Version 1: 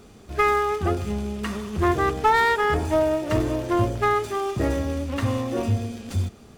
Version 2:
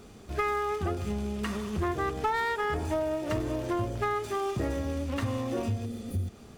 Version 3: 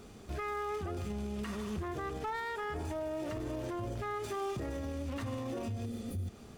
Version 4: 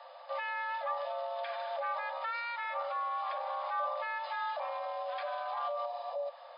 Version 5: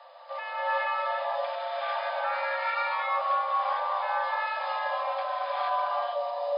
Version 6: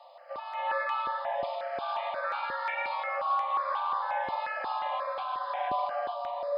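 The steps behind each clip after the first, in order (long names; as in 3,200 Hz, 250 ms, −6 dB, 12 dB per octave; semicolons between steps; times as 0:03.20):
healed spectral selection 0:05.88–0:06.25, 580–9,000 Hz after; downward compressor 3 to 1, threshold −27 dBFS, peak gain reduction 9.5 dB; level −1.5 dB
brickwall limiter −28.5 dBFS, peak gain reduction 10.5 dB; level −2 dB
hollow resonant body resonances 690/3,100 Hz, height 14 dB, ringing for 85 ms; frequency shifter +480 Hz; brick-wall band-pass 490–5,100 Hz
reverb whose tail is shaped and stops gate 490 ms rising, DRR −7 dB
step-sequenced phaser 5.6 Hz 420–1,900 Hz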